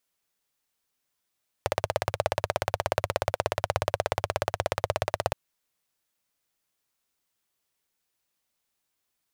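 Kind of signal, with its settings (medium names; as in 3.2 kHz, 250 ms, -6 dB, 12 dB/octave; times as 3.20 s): single-cylinder engine model, steady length 3.67 s, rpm 2000, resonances 100/590 Hz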